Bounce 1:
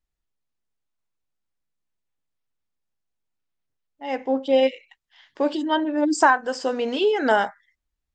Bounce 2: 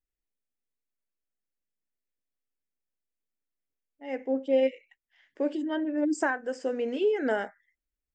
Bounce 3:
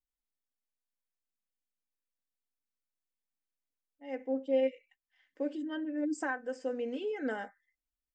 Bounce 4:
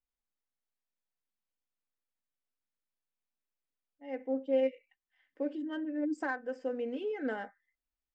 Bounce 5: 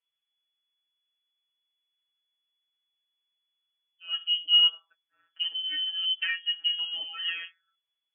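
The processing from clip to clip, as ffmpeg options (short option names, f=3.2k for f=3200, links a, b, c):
-af "equalizer=f=125:t=o:w=1:g=-8,equalizer=f=250:t=o:w=1:g=4,equalizer=f=500:t=o:w=1:g=5,equalizer=f=1k:t=o:w=1:g=-11,equalizer=f=2k:t=o:w=1:g=6,equalizer=f=4k:t=o:w=1:g=-12,volume=-8dB"
-af "aecho=1:1:3.9:0.56,volume=-8.5dB"
-af "adynamicsmooth=sensitivity=5:basefreq=3.9k"
-af "aemphasis=mode=reproduction:type=75fm,afftfilt=real='hypot(re,im)*cos(PI*b)':imag='0':win_size=1024:overlap=0.75,lowpass=f=2.9k:t=q:w=0.5098,lowpass=f=2.9k:t=q:w=0.6013,lowpass=f=2.9k:t=q:w=0.9,lowpass=f=2.9k:t=q:w=2.563,afreqshift=-3400,volume=8.5dB"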